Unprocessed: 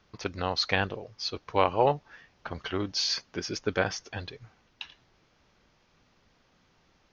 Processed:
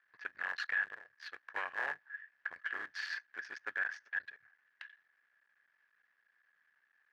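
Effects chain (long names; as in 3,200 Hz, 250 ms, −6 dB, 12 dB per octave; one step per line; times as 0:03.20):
sub-harmonics by changed cycles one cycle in 3, muted
in parallel at −9 dB: bit reduction 5 bits
on the sum: resonant band-pass 1,700 Hz, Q 18
brickwall limiter −36 dBFS, peak gain reduction 11 dB
level +11 dB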